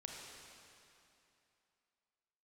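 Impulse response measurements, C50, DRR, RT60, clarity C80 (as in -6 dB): 0.0 dB, -1.0 dB, 2.8 s, 1.5 dB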